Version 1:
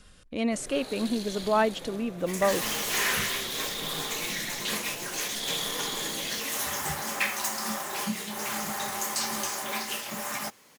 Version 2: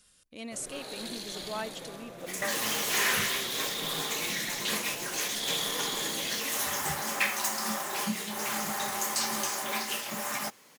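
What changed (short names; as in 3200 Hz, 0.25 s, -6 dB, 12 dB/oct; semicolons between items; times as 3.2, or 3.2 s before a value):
speech: add pre-emphasis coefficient 0.8; master: add low shelf 61 Hz -10 dB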